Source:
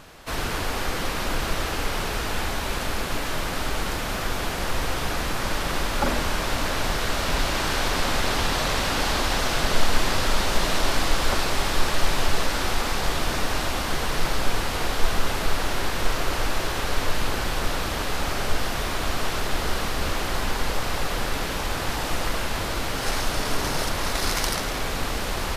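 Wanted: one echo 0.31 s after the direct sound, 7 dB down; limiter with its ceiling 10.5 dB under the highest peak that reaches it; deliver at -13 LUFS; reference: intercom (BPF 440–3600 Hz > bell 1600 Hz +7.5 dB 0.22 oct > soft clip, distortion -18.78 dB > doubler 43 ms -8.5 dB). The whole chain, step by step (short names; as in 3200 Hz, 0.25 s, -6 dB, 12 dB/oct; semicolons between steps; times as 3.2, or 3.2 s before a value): limiter -16 dBFS; BPF 440–3600 Hz; bell 1600 Hz +7.5 dB 0.22 oct; echo 0.31 s -7 dB; soft clip -22 dBFS; doubler 43 ms -8.5 dB; gain +16 dB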